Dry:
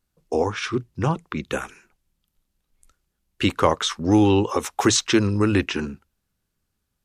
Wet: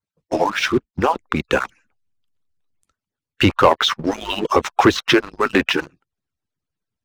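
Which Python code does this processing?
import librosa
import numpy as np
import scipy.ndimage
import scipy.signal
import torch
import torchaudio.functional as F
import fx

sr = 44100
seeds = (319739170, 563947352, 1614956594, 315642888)

p1 = fx.hpss_only(x, sr, part='percussive')
p2 = fx.air_absorb(p1, sr, metres=54.0)
p3 = fx.env_lowpass_down(p2, sr, base_hz=2400.0, full_db=-17.5)
p4 = fx.dynamic_eq(p3, sr, hz=200.0, q=0.72, threshold_db=-34.0, ratio=4.0, max_db=-6)
p5 = fx.backlash(p4, sr, play_db=-34.5)
p6 = p4 + F.gain(torch.from_numpy(p5), -7.0).numpy()
y = fx.leveller(p6, sr, passes=2)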